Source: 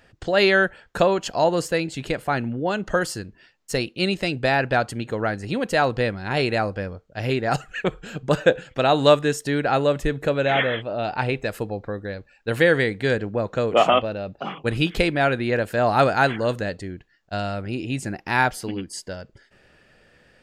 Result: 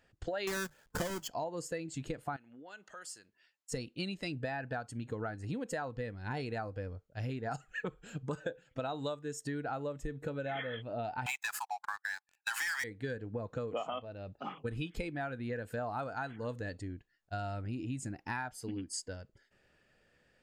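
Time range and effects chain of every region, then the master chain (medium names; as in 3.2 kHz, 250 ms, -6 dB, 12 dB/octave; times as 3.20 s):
0.47–1.28 s: square wave that keeps the level + hum notches 50/100/150 Hz
2.36–3.72 s: high-pass 1.2 kHz 6 dB/octave + compression 2:1, threshold -41 dBFS
11.26–12.84 s: steep high-pass 750 Hz 96 dB/octave + waveshaping leveller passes 5
whole clip: spectral noise reduction 9 dB; compression 16:1, threshold -29 dBFS; peaking EQ 7.1 kHz +4.5 dB 0.27 oct; trim -5 dB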